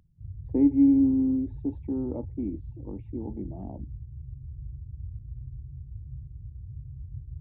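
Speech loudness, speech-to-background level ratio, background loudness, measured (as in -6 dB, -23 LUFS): -25.5 LUFS, 16.5 dB, -42.0 LUFS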